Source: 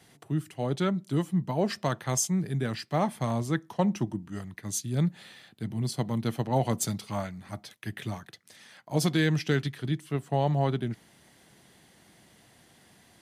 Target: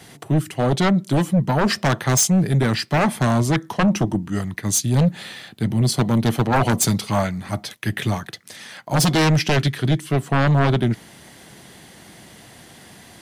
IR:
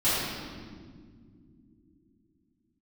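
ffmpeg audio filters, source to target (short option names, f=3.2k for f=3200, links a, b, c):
-af "aeval=exprs='0.237*sin(PI/2*3.16*val(0)/0.237)':c=same"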